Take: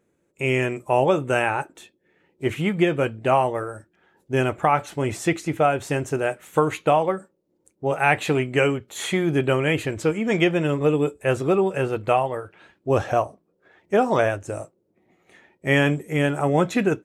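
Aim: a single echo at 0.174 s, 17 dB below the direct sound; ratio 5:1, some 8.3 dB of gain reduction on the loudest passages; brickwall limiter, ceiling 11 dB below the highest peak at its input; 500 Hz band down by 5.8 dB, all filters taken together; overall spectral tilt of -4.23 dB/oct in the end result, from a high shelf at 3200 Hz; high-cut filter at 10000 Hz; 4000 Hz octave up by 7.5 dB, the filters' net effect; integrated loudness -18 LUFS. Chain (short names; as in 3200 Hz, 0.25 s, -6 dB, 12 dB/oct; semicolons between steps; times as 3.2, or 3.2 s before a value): LPF 10000 Hz; bell 500 Hz -8 dB; high shelf 3200 Hz +7.5 dB; bell 4000 Hz +5.5 dB; compressor 5:1, threshold -23 dBFS; limiter -22.5 dBFS; echo 0.174 s -17 dB; gain +14.5 dB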